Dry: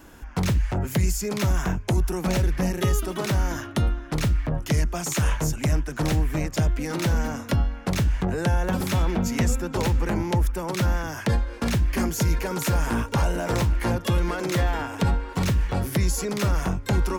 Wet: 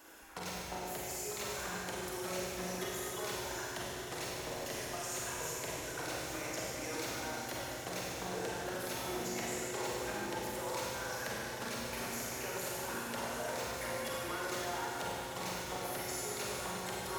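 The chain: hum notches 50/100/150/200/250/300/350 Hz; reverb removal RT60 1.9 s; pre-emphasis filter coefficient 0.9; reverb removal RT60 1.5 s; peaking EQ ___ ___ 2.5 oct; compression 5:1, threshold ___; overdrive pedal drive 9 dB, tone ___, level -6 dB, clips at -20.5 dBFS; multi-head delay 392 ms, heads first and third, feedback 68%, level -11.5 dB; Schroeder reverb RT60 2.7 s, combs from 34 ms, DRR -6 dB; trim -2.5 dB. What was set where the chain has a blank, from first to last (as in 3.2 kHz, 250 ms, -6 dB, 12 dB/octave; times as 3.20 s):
470 Hz, +12 dB, -41 dBFS, 3.6 kHz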